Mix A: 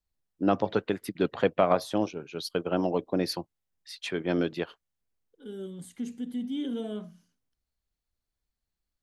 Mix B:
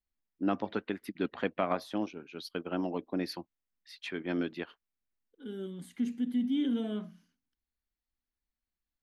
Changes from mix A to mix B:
first voice −6.0 dB
master: add graphic EQ with 10 bands 125 Hz −9 dB, 250 Hz +6 dB, 500 Hz −5 dB, 2,000 Hz +4 dB, 8,000 Hz −8 dB

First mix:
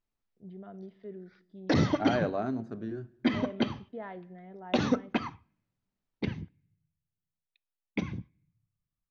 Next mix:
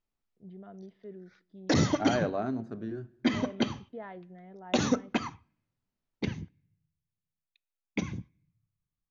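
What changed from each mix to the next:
first voice: send −8.5 dB
background: add low-pass with resonance 6,900 Hz, resonance Q 7.2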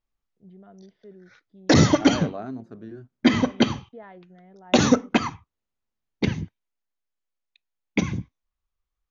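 background +9.5 dB
reverb: off

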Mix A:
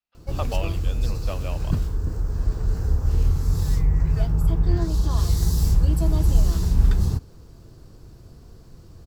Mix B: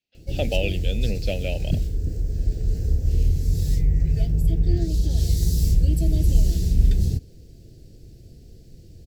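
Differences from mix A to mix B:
first voice +9.5 dB
master: add Butterworth band-reject 1,100 Hz, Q 0.7

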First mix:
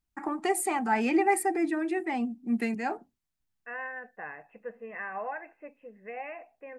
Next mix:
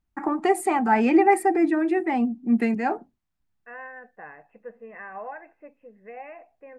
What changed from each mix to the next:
first voice +7.5 dB
master: add high-shelf EQ 2,900 Hz −12 dB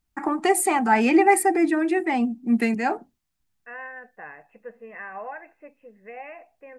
master: add high-shelf EQ 2,900 Hz +12 dB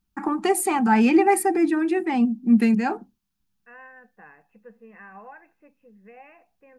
second voice −6.0 dB
master: add thirty-one-band graphic EQ 200 Hz +11 dB, 630 Hz −9 dB, 2,000 Hz −6 dB, 8,000 Hz −5 dB

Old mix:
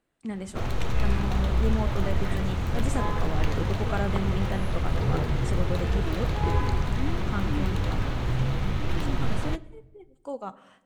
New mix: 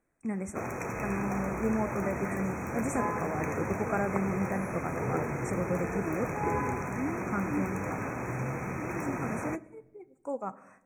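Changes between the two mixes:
background: add high-pass filter 200 Hz 12 dB per octave
master: add linear-phase brick-wall band-stop 2,600–5,500 Hz

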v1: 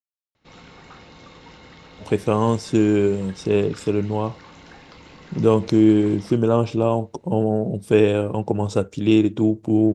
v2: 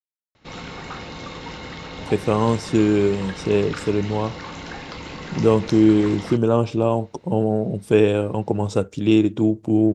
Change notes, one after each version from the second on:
background +10.5 dB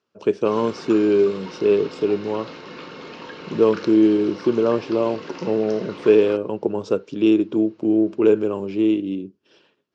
speech: entry −1.85 s
master: add loudspeaker in its box 250–5,300 Hz, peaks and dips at 390 Hz +5 dB, 780 Hz −8 dB, 2,000 Hz −8 dB, 3,700 Hz −6 dB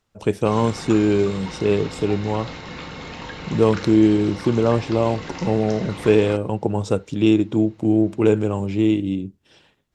master: remove loudspeaker in its box 250–5,300 Hz, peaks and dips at 390 Hz +5 dB, 780 Hz −8 dB, 2,000 Hz −8 dB, 3,700 Hz −6 dB

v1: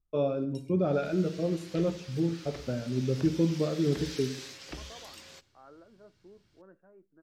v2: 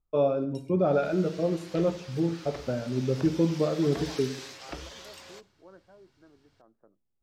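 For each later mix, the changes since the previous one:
second voice: entry −0.95 s
master: add parametric band 840 Hz +7 dB 1.7 octaves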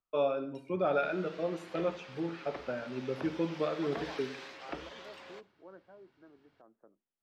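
first voice: add tilt shelving filter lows −9.5 dB, about 1,100 Hz
master: add three-way crossover with the lows and the highs turned down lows −13 dB, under 160 Hz, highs −18 dB, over 3,400 Hz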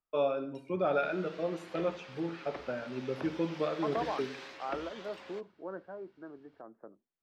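second voice +11.0 dB

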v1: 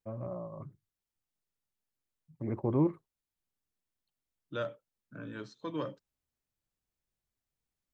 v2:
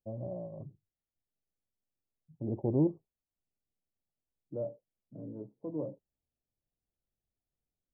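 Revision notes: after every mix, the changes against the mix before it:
master: add Butterworth low-pass 800 Hz 48 dB per octave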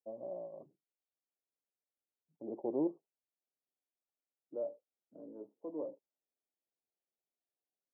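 master: add Bessel high-pass filter 410 Hz, order 4

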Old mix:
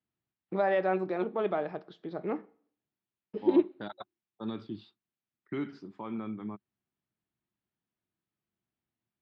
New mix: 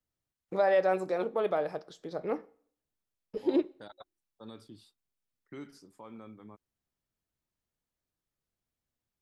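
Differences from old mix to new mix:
second voice −8.5 dB
master: remove loudspeaker in its box 100–3,600 Hz, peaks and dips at 120 Hz +3 dB, 200 Hz +6 dB, 350 Hz +5 dB, 510 Hz −7 dB

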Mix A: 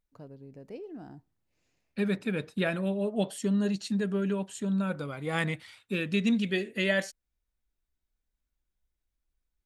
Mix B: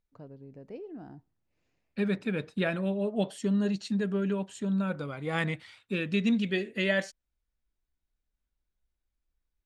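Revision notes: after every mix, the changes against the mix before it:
first voice: add high-shelf EQ 4,200 Hz −7.5 dB
master: add high-frequency loss of the air 51 metres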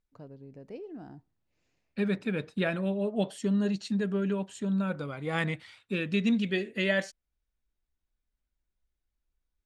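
first voice: add high-shelf EQ 4,200 Hz +7.5 dB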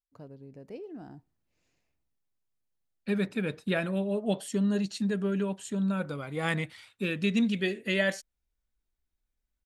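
second voice: entry +1.10 s
master: remove high-frequency loss of the air 51 metres

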